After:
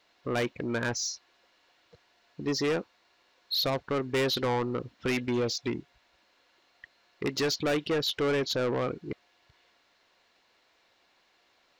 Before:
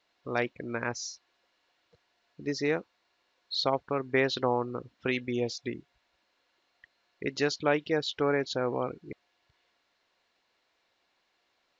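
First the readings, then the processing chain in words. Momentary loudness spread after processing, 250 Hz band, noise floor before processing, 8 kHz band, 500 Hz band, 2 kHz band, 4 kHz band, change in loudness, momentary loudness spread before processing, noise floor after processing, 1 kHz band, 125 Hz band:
9 LU, +2.0 dB, −75 dBFS, can't be measured, +0.5 dB, −1.0 dB, +4.5 dB, +1.0 dB, 12 LU, −68 dBFS, −1.5 dB, +3.0 dB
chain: soft clipping −30.5 dBFS, distortion −6 dB
level +7 dB

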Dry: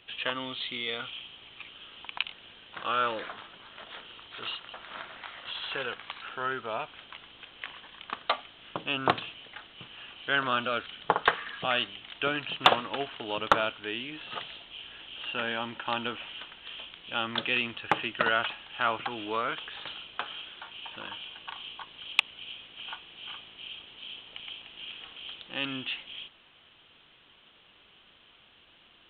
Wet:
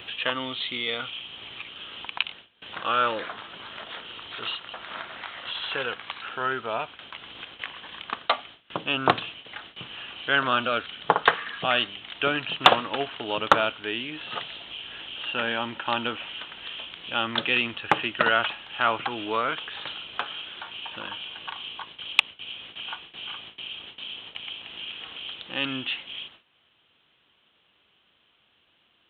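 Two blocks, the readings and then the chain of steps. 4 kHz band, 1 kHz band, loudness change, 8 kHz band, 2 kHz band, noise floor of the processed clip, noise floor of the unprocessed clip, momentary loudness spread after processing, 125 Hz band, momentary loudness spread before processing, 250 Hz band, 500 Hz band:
+4.5 dB, +4.5 dB, +4.5 dB, can't be measured, +4.5 dB, −66 dBFS, −59 dBFS, 15 LU, +4.5 dB, 17 LU, +4.5 dB, +4.5 dB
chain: upward compression, threshold −38 dBFS
noise gate with hold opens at −36 dBFS
high-pass filter 57 Hz
level +4.5 dB

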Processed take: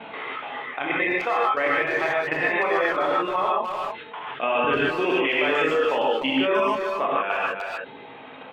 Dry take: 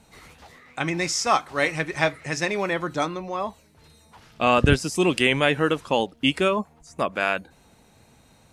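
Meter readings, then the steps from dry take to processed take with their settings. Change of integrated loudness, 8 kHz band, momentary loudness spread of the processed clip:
0.0 dB, below −20 dB, 11 LU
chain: Chebyshev low-pass filter 3,400 Hz, order 6
treble cut that deepens with the level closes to 2,700 Hz, closed at −21.5 dBFS
high-pass filter 370 Hz 12 dB per octave
reverb reduction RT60 0.95 s
chorus effect 0.38 Hz, delay 18 ms, depth 5 ms
brickwall limiter −22 dBFS, peak gain reduction 11 dB
output level in coarse steps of 11 dB
far-end echo of a speakerphone 300 ms, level −10 dB
reverb whose tail is shaped and stops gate 170 ms rising, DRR −5 dB
envelope flattener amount 50%
level +5.5 dB

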